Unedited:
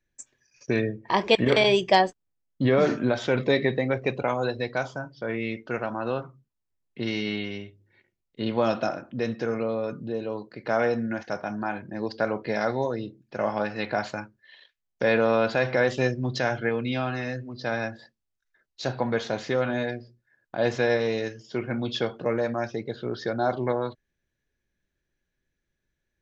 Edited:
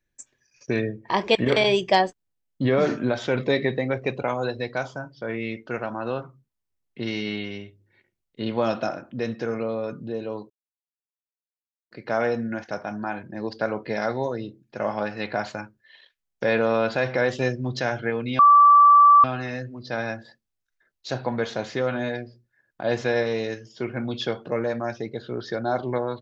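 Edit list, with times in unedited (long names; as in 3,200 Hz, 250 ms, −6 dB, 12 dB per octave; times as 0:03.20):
0:10.50: splice in silence 1.41 s
0:16.98: insert tone 1,160 Hz −9.5 dBFS 0.85 s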